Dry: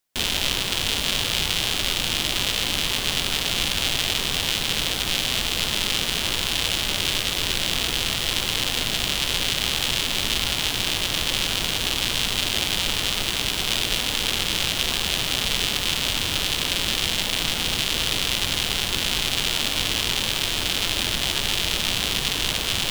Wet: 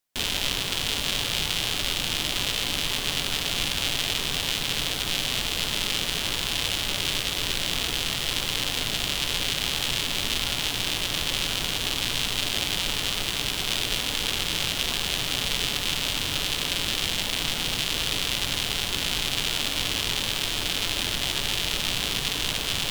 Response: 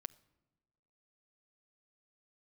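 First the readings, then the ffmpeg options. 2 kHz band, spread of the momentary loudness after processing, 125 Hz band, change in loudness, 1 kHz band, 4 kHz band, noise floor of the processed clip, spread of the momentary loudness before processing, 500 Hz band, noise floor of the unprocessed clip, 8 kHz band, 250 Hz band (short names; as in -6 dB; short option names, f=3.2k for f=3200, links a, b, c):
-3.0 dB, 1 LU, -3.0 dB, -3.0 dB, -3.0 dB, -3.0 dB, -30 dBFS, 1 LU, -3.0 dB, -27 dBFS, -3.0 dB, -3.0 dB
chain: -filter_complex "[1:a]atrim=start_sample=2205,asetrate=41454,aresample=44100[a];[0:a][a]afir=irnorm=-1:irlink=0,volume=1dB"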